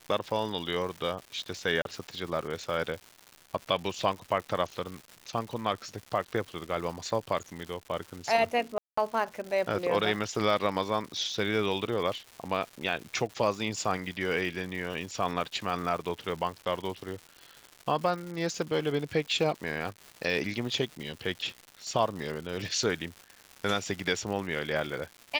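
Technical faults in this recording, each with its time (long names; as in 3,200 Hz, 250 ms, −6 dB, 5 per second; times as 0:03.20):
surface crackle 280 per second −37 dBFS
0:01.82–0:01.85: drop-out 32 ms
0:08.78–0:08.97: drop-out 195 ms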